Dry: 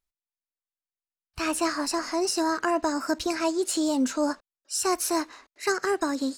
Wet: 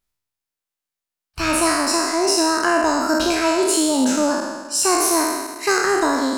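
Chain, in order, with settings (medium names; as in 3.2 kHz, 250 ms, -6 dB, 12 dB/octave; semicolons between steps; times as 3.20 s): spectral sustain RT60 1.37 s; trim +5 dB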